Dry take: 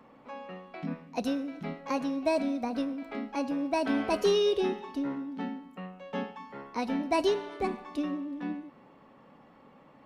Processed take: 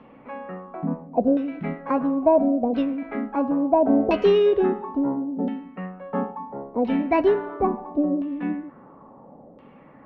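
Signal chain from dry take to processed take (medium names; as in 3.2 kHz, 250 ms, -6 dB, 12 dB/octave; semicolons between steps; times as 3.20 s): LFO low-pass saw down 0.73 Hz 530–3100 Hz; tilt shelf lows +5 dB; trim +4 dB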